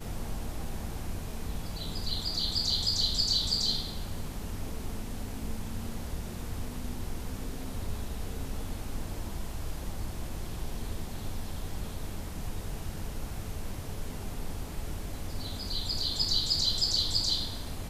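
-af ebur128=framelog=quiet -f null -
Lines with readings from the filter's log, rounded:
Integrated loudness:
  I:         -33.0 LUFS
  Threshold: -43.0 LUFS
Loudness range:
  LRA:        10.8 LU
  Threshold: -53.8 LUFS
  LRA low:   -39.9 LUFS
  LRA high:  -29.1 LUFS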